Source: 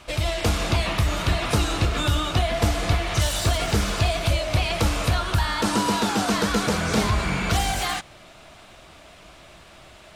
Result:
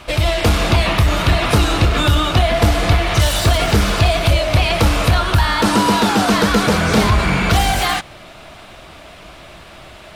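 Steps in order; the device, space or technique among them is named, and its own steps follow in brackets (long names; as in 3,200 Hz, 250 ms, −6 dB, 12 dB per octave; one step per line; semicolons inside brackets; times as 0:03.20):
parametric band 7,100 Hz −5 dB 0.97 octaves
parallel distortion (in parallel at −6 dB: hard clipping −20.5 dBFS, distortion −10 dB)
on the sum: level +5.5 dB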